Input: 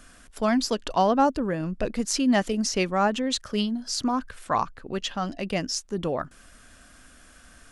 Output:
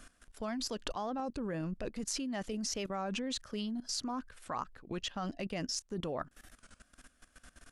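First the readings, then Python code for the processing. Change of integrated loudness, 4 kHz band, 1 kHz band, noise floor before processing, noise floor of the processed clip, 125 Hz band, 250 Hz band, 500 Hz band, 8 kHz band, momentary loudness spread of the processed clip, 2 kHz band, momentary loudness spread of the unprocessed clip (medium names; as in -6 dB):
-12.0 dB, -9.0 dB, -15.0 dB, -53 dBFS, -70 dBFS, -9.5 dB, -12.5 dB, -13.0 dB, -8.5 dB, 5 LU, -13.0 dB, 8 LU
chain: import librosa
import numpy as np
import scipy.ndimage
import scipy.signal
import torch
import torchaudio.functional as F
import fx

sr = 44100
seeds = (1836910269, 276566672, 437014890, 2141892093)

y = fx.level_steps(x, sr, step_db=17)
y = fx.record_warp(y, sr, rpm=33.33, depth_cents=160.0)
y = F.gain(torch.from_numpy(y), -2.5).numpy()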